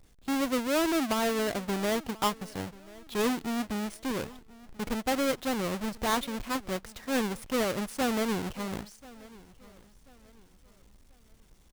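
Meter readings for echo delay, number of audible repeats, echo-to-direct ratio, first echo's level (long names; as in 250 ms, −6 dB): 1,036 ms, 2, −21.0 dB, −21.5 dB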